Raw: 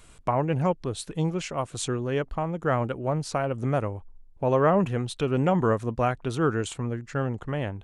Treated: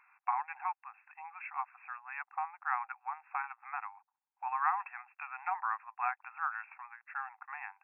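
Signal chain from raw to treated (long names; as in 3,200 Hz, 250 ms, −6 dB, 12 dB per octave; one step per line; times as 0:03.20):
linear-phase brick-wall band-pass 740–2,700 Hz
level −3.5 dB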